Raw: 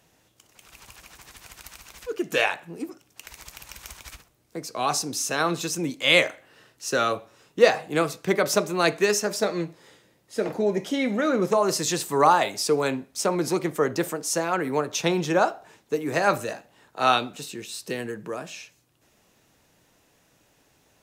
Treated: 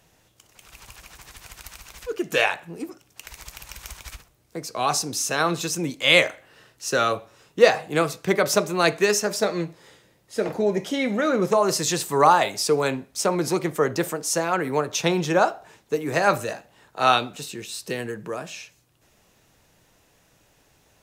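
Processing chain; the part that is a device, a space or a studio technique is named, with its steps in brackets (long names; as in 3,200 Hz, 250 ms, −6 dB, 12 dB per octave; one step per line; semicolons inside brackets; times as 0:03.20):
low shelf boost with a cut just above (low-shelf EQ 70 Hz +7.5 dB; parametric band 270 Hz −3 dB 0.77 octaves)
level +2 dB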